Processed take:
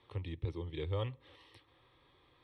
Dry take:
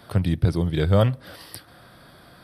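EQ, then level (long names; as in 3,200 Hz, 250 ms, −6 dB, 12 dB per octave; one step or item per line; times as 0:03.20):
transistor ladder low-pass 5,500 Hz, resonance 50%
phaser with its sweep stopped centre 990 Hz, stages 8
−4.5 dB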